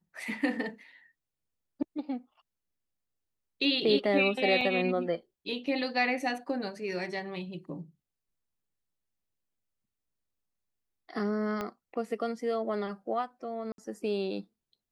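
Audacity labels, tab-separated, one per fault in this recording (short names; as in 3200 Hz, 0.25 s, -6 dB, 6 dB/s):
4.610000	4.610000	gap 4.5 ms
11.610000	11.610000	pop -20 dBFS
13.720000	13.780000	gap 62 ms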